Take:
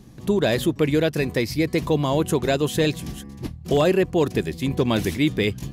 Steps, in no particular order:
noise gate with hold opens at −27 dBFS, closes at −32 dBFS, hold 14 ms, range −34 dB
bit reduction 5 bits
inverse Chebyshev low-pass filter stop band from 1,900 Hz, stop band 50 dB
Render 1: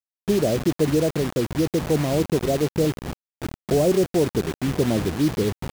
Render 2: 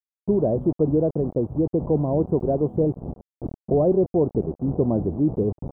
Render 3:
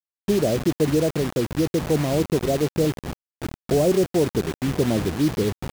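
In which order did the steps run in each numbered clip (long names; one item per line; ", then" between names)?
noise gate with hold, then inverse Chebyshev low-pass filter, then bit reduction
noise gate with hold, then bit reduction, then inverse Chebyshev low-pass filter
inverse Chebyshev low-pass filter, then noise gate with hold, then bit reduction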